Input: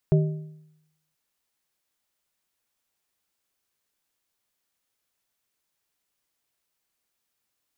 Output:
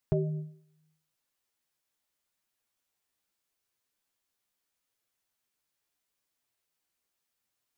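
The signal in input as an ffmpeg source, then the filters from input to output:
-f lavfi -i "aevalsrc='0.2*pow(10,-3*t/0.84)*sin(2*PI*155*t)+0.0891*pow(10,-3*t/0.638)*sin(2*PI*387.5*t)+0.0398*pow(10,-3*t/0.554)*sin(2*PI*620*t)':duration=1.03:sample_rate=44100"
-af "flanger=delay=7.5:depth=9:regen=23:speed=0.78:shape=triangular"

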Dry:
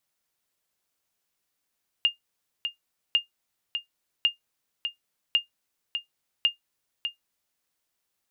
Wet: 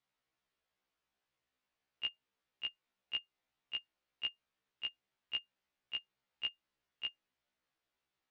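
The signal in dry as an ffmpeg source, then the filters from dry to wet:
-f lavfi -i "aevalsrc='0.237*(sin(2*PI*2820*mod(t,1.1))*exp(-6.91*mod(t,1.1)/0.13)+0.398*sin(2*PI*2820*max(mod(t,1.1)-0.6,0))*exp(-6.91*max(mod(t,1.1)-0.6,0)/0.13))':duration=5.5:sample_rate=44100"
-af "lowpass=3400,alimiter=limit=-20.5dB:level=0:latency=1:release=154,afftfilt=real='re*1.73*eq(mod(b,3),0)':imag='im*1.73*eq(mod(b,3),0)':win_size=2048:overlap=0.75"

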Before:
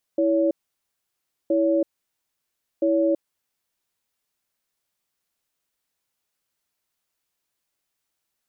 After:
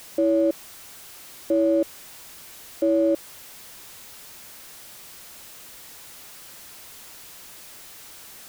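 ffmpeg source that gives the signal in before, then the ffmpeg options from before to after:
-f lavfi -i "aevalsrc='0.1*(sin(2*PI*328*t)+sin(2*PI*563*t))*clip(min(mod(t,1.32),0.33-mod(t,1.32))/0.005,0,1)':duration=2.97:sample_rate=44100"
-af "aeval=exprs='val(0)+0.5*0.0133*sgn(val(0))':channel_layout=same"

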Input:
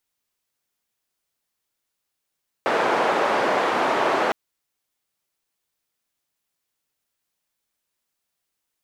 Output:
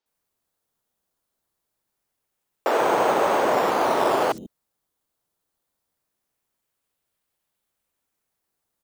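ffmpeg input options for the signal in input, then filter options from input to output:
-f lavfi -i "anoisesrc=color=white:duration=1.66:sample_rate=44100:seed=1,highpass=frequency=410,lowpass=frequency=940,volume=-0.6dB"
-filter_complex "[0:a]equalizer=frequency=1900:width_type=o:width=1.4:gain=-7,acrossover=split=250|5500[link_01][link_02][link_03];[link_03]adelay=60[link_04];[link_01]adelay=140[link_05];[link_05][link_02][link_04]amix=inputs=3:normalize=0,asplit=2[link_06][link_07];[link_07]acrusher=samples=11:mix=1:aa=0.000001:lfo=1:lforange=11:lforate=0.24,volume=-7.5dB[link_08];[link_06][link_08]amix=inputs=2:normalize=0"

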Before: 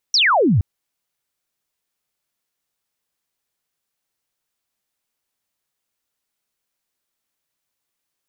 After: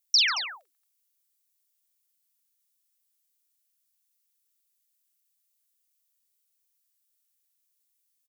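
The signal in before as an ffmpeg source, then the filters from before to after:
-f lavfi -i "aevalsrc='0.251*clip(t/0.002,0,1)*clip((0.47-t)/0.002,0,1)*sin(2*PI*5900*0.47/log(81/5900)*(exp(log(81/5900)*t/0.47)-1))':duration=0.47:sample_rate=44100"
-af "highpass=frequency=1000:width=0.5412,highpass=frequency=1000:width=1.3066,aderivative,aecho=1:1:44|140|225:0.473|0.237|0.282"

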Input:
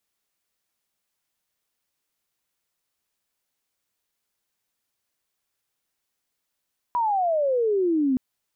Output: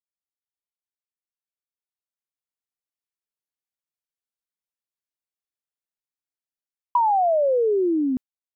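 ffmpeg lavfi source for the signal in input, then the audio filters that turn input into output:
-f lavfi -i "aevalsrc='pow(10,(-20+1.5*t/1.22)/20)*sin(2*PI*990*1.22/log(250/990)*(exp(log(250/990)*t/1.22)-1))':duration=1.22:sample_rate=44100"
-af "dynaudnorm=framelen=370:gausssize=11:maxgain=15dB,agate=range=-33dB:threshold=-16dB:ratio=3:detection=peak,acompressor=threshold=-18dB:ratio=6"

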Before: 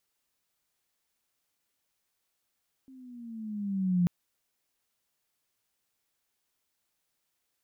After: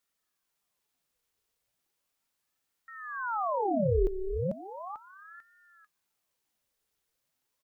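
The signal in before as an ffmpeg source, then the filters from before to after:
-f lavfi -i "aevalsrc='pow(10,(-20.5+28*(t/1.19-1))/20)*sin(2*PI*267*1.19/(-7.5*log(2)/12)*(exp(-7.5*log(2)/12*t/1.19)-1))':duration=1.19:sample_rate=44100"
-af "equalizer=frequency=230:width_type=o:width=0.46:gain=12.5,aecho=1:1:444|888|1332|1776:0.531|0.17|0.0544|0.0174,aeval=exprs='val(0)*sin(2*PI*900*n/s+900*0.8/0.36*sin(2*PI*0.36*n/s))':channel_layout=same"

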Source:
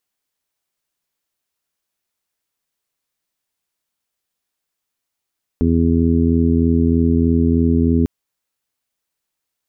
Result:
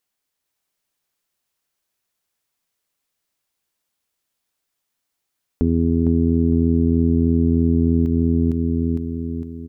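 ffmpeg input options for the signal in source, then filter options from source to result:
-f lavfi -i "aevalsrc='0.141*sin(2*PI*83.2*t)+0.1*sin(2*PI*166.4*t)+0.178*sin(2*PI*249.6*t)+0.0708*sin(2*PI*332.8*t)+0.0668*sin(2*PI*416*t)':duration=2.45:sample_rate=44100"
-filter_complex "[0:a]asplit=2[link_01][link_02];[link_02]aecho=0:1:457|914|1371|1828|2285|2742:0.631|0.315|0.158|0.0789|0.0394|0.0197[link_03];[link_01][link_03]amix=inputs=2:normalize=0,acompressor=threshold=-13dB:ratio=6"

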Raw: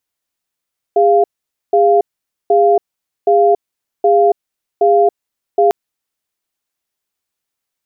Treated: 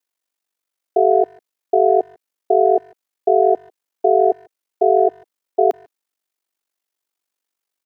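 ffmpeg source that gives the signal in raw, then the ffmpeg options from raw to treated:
-f lavfi -i "aevalsrc='0.316*(sin(2*PI*407*t)+sin(2*PI*695*t))*clip(min(mod(t,0.77),0.28-mod(t,0.77))/0.005,0,1)':duration=4.75:sample_rate=44100"
-filter_complex "[0:a]highpass=frequency=250:width=0.5412,highpass=frequency=250:width=1.3066,aeval=exprs='val(0)*sin(2*PI*24*n/s)':channel_layout=same,asplit=2[link_01][link_02];[link_02]adelay=150,highpass=300,lowpass=3400,asoftclip=type=hard:threshold=-12.5dB,volume=-28dB[link_03];[link_01][link_03]amix=inputs=2:normalize=0"

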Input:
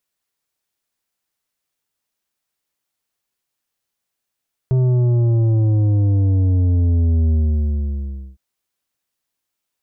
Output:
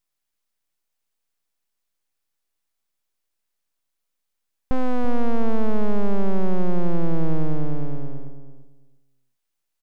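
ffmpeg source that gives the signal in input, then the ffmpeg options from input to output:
-f lavfi -i "aevalsrc='0.211*clip((3.66-t)/1.05,0,1)*tanh(2.66*sin(2*PI*130*3.66/log(65/130)*(exp(log(65/130)*t/3.66)-1)))/tanh(2.66)':duration=3.66:sample_rate=44100"
-filter_complex "[0:a]aeval=exprs='abs(val(0))':channel_layout=same,asplit=2[link_01][link_02];[link_02]adelay=336,lowpass=frequency=860:poles=1,volume=-9dB,asplit=2[link_03][link_04];[link_04]adelay=336,lowpass=frequency=860:poles=1,volume=0.2,asplit=2[link_05][link_06];[link_06]adelay=336,lowpass=frequency=860:poles=1,volume=0.2[link_07];[link_03][link_05][link_07]amix=inputs=3:normalize=0[link_08];[link_01][link_08]amix=inputs=2:normalize=0"

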